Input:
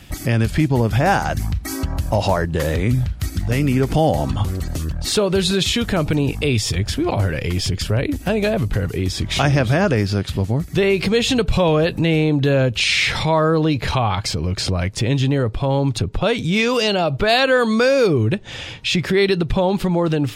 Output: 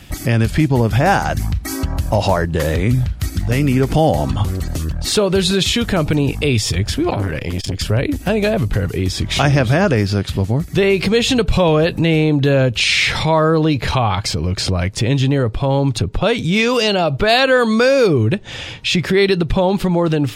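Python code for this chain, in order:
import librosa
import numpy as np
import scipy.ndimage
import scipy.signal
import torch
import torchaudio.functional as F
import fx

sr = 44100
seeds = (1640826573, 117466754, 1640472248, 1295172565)

y = fx.transformer_sat(x, sr, knee_hz=330.0, at=(7.1, 7.79))
y = y * librosa.db_to_amplitude(2.5)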